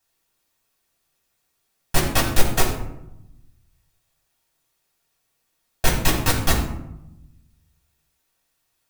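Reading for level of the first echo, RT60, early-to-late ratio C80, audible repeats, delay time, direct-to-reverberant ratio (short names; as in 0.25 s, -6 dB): none, 0.85 s, 8.0 dB, none, none, -4.0 dB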